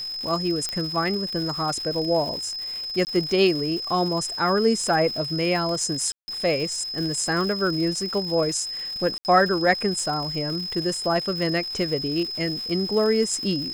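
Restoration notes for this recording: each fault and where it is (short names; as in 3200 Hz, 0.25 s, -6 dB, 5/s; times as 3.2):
crackle 230/s -31 dBFS
tone 5100 Hz -29 dBFS
0.69 pop -13 dBFS
3.05–3.07 gap 19 ms
6.12–6.28 gap 0.16 s
9.18–9.25 gap 69 ms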